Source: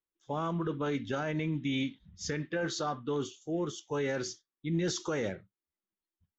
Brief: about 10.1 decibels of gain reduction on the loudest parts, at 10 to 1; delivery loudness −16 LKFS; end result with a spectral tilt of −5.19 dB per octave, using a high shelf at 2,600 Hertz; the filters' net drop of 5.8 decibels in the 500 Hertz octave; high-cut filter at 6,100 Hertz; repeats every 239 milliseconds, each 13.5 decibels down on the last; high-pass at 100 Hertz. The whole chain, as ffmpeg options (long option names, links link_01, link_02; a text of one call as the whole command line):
ffmpeg -i in.wav -af "highpass=100,lowpass=6100,equalizer=frequency=500:width_type=o:gain=-7,highshelf=frequency=2600:gain=-7,acompressor=threshold=-40dB:ratio=10,aecho=1:1:239|478:0.211|0.0444,volume=29.5dB" out.wav